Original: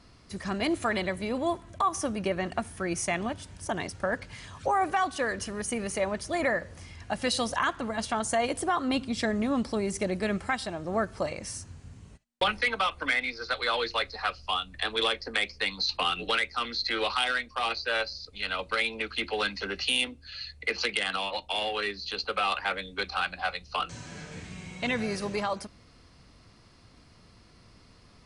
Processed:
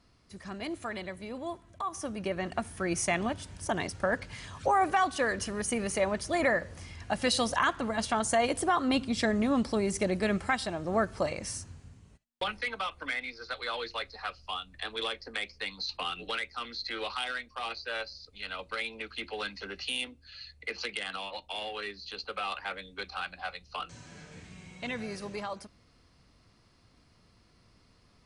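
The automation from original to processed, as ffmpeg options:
ffmpeg -i in.wav -af "volume=0.5dB,afade=type=in:start_time=1.81:duration=1.19:silence=0.334965,afade=type=out:start_time=11.52:duration=0.49:silence=0.421697" out.wav

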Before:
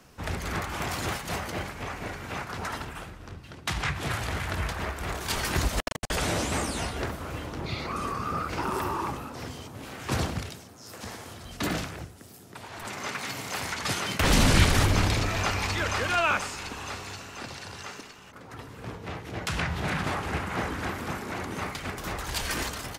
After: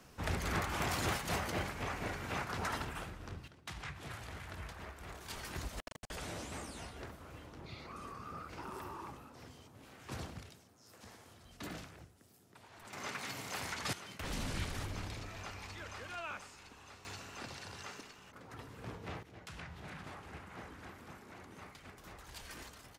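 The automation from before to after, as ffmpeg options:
ffmpeg -i in.wav -af "asetnsamples=nb_out_samples=441:pad=0,asendcmd='3.48 volume volume -16dB;12.93 volume volume -8.5dB;13.93 volume volume -19dB;17.05 volume volume -7.5dB;19.23 volume volume -19dB',volume=-4dB" out.wav

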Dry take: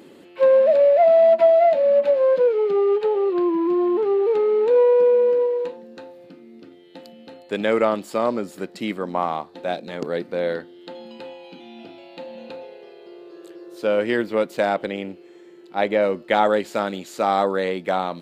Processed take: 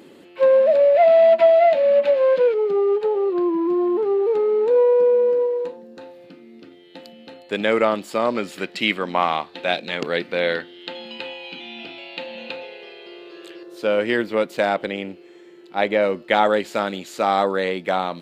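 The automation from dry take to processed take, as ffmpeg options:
ffmpeg -i in.wav -af "asetnsamples=nb_out_samples=441:pad=0,asendcmd='0.95 equalizer g 7.5;2.54 equalizer g -3.5;6.01 equalizer g 5;8.35 equalizer g 14.5;13.63 equalizer g 4',equalizer=frequency=2700:width_type=o:width=1.8:gain=1.5" out.wav

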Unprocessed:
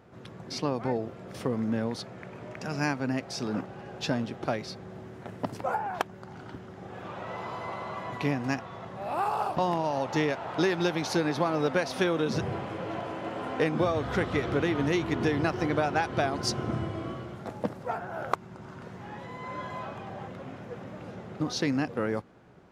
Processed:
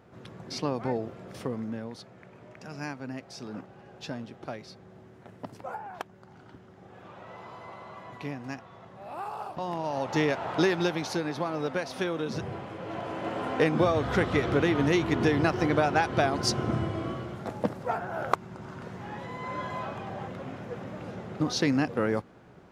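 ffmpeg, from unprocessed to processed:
ffmpeg -i in.wav -af "volume=17dB,afade=type=out:start_time=1.19:duration=0.63:silence=0.421697,afade=type=in:start_time=9.59:duration=0.85:silence=0.281838,afade=type=out:start_time=10.44:duration=0.77:silence=0.446684,afade=type=in:start_time=12.79:duration=0.5:silence=0.473151" out.wav

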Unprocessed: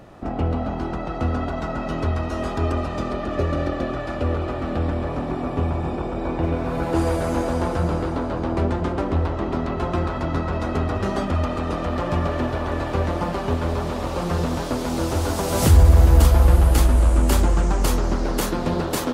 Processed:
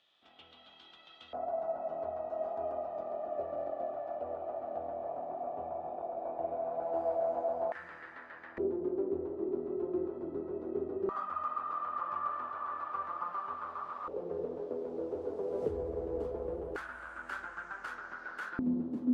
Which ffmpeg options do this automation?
ffmpeg -i in.wav -af "asetnsamples=nb_out_samples=441:pad=0,asendcmd='1.33 bandpass f 680;7.72 bandpass f 1800;8.58 bandpass f 380;11.09 bandpass f 1200;14.08 bandpass f 440;16.76 bandpass f 1500;18.59 bandpass f 250',bandpass=frequency=3400:width_type=q:width=9.5:csg=0" out.wav

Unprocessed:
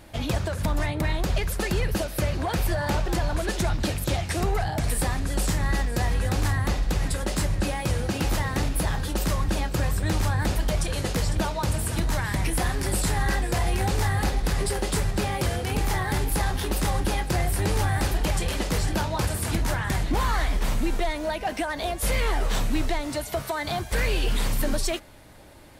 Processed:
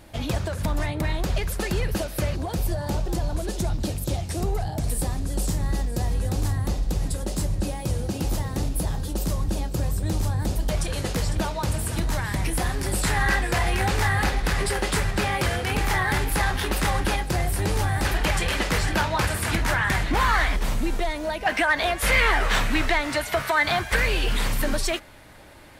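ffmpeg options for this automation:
ffmpeg -i in.wav -af "asetnsamples=nb_out_samples=441:pad=0,asendcmd='2.36 equalizer g -10.5;10.69 equalizer g -0.5;13.03 equalizer g 7.5;17.16 equalizer g 0.5;18.05 equalizer g 9;20.56 equalizer g 0.5;21.46 equalizer g 12.5;23.96 equalizer g 5.5',equalizer=frequency=1800:width_type=o:width=2:gain=-1" out.wav

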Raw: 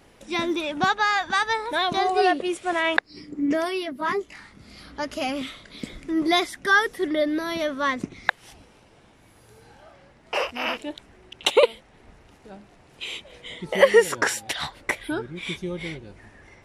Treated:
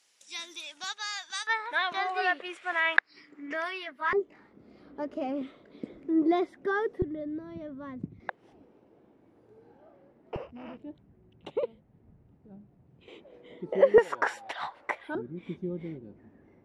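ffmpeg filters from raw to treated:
ffmpeg -i in.wav -af "asetnsamples=nb_out_samples=441:pad=0,asendcmd='1.47 bandpass f 1700;4.13 bandpass f 390;7.02 bandpass f 120;8.2 bandpass f 340;10.36 bandpass f 140;13.08 bandpass f 350;13.98 bandpass f 900;15.15 bandpass f 250',bandpass=frequency=6500:width_type=q:width=1.4:csg=0" out.wav

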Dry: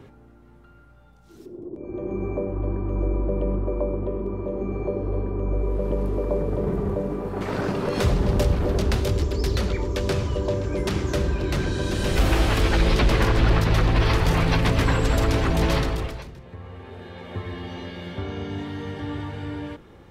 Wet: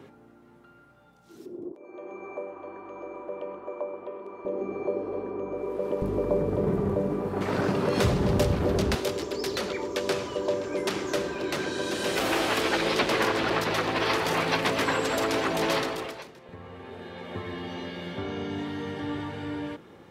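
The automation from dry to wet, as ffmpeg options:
ffmpeg -i in.wav -af "asetnsamples=nb_out_samples=441:pad=0,asendcmd='1.72 highpass f 720;4.45 highpass f 330;6.02 highpass f 100;8.95 highpass f 320;16.49 highpass f 150',highpass=180" out.wav

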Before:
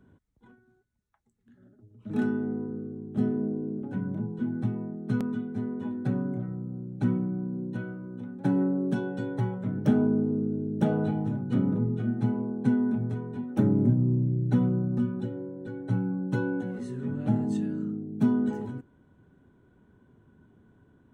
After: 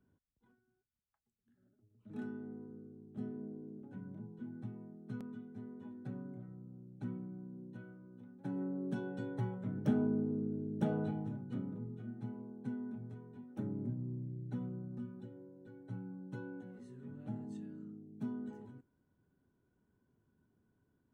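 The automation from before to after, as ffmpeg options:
ffmpeg -i in.wav -af "volume=-9dB,afade=type=in:start_time=8.46:duration=0.67:silence=0.446684,afade=type=out:start_time=10.99:duration=0.71:silence=0.398107" out.wav

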